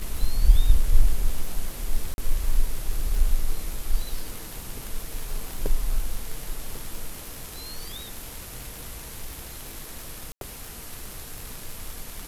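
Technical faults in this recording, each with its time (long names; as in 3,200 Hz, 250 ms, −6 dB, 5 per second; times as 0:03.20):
surface crackle 100 per second −29 dBFS
0:02.14–0:02.18: drop-out 41 ms
0:10.32–0:10.41: drop-out 92 ms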